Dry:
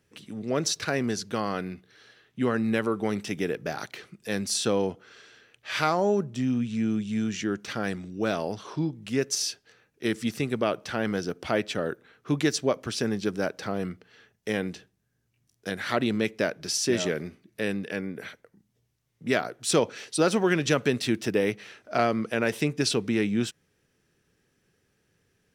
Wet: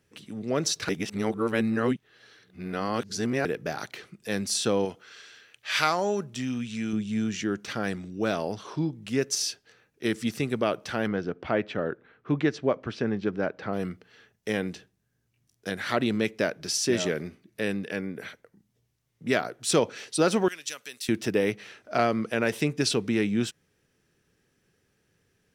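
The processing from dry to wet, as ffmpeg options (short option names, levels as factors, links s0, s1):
-filter_complex "[0:a]asettb=1/sr,asplit=3[s0][s1][s2];[s0]atrim=end=4.854[s3];[s1]atrim=start=4.85:end=6.93,asetpts=PTS-STARTPTS,afade=t=in:d=0.004:c=qsin,afade=t=out:st=2.076:d=0.004:c=qsin,tiltshelf=f=970:g=-5.5[s4];[s2]atrim=start=6.926[s5];[s3][s4]acrossfade=d=0.004:c1=hsin:c2=qsin[s6];[s6][s5]acrossfade=d=0.004:c1=qsin:c2=hsin,asettb=1/sr,asplit=3[s7][s8][s9];[s7]atrim=end=11.074[s10];[s8]atrim=start=11.07:end=13.73,asetpts=PTS-STARTPTS,afade=t=in:d=0.004:c=qsin,afade=t=out:st=2.656:d=0.004:c=qsin,lowpass=2400[s11];[s9]atrim=start=13.726[s12];[s10][s11]acrossfade=d=0.004:c1=hsin:c2=qsin[s13];[s13][s12]acrossfade=d=0.004:c1=qsin:c2=hsin,asettb=1/sr,asplit=3[s14][s15][s16];[s14]atrim=end=20.484[s17];[s15]atrim=start=20.48:end=21.09,asetpts=PTS-STARTPTS,afade=t=in:d=0.004:c=qsin,afade=t=out:st=0.606:d=0.004:c=qsin,aderivative[s18];[s16]atrim=start=21.086[s19];[s17][s18]acrossfade=d=0.004:c1=hsin:c2=qsin[s20];[s20][s19]acrossfade=d=0.004:c1=qsin:c2=hsin,asplit=3[s21][s22][s23];[s21]atrim=end=0.892[s24];[s22]atrim=start=0.888:end=3.452,asetpts=PTS-STARTPTS,areverse[s25];[s23]atrim=start=3.448[s26];[s24][s25]acrossfade=d=0.004:c1=hsin:c2=hsin[s27];[s27][s26]acrossfade=d=0.004:c1=hsin:c2=hsin"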